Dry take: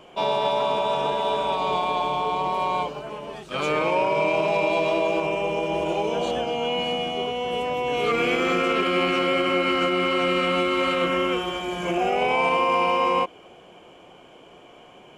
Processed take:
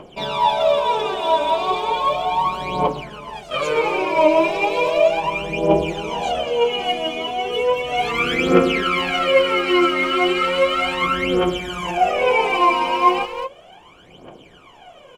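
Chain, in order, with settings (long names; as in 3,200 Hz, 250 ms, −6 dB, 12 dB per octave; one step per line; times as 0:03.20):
far-end echo of a speakerphone 210 ms, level −8 dB
phase shifter 0.35 Hz, delay 3.3 ms, feedback 77%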